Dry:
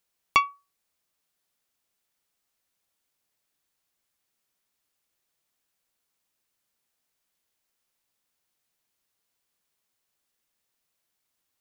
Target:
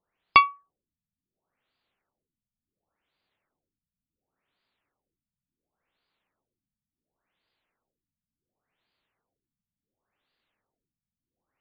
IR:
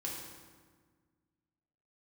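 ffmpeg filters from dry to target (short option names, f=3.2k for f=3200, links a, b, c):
-af "acontrast=39,afftfilt=real='re*lt(b*sr/1024,230*pow(5000/230,0.5+0.5*sin(2*PI*0.7*pts/sr)))':imag='im*lt(b*sr/1024,230*pow(5000/230,0.5+0.5*sin(2*PI*0.7*pts/sr)))':win_size=1024:overlap=0.75"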